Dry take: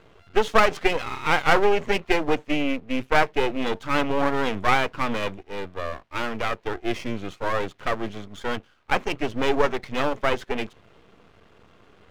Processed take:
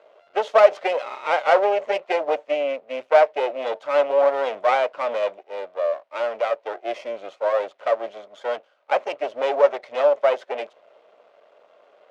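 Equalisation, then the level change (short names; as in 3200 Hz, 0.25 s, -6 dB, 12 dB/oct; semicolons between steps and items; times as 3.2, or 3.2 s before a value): resonant high-pass 590 Hz, resonance Q 7; air absorption 65 m; notch 1700 Hz, Q 24; -4.0 dB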